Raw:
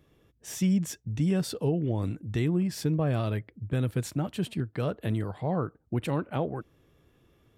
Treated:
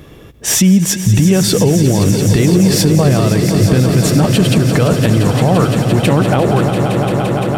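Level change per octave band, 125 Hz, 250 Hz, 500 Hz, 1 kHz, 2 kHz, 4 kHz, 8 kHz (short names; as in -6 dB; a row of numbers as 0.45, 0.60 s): +18.5, +18.0, +18.5, +19.0, +20.5, +23.0, +25.0 dB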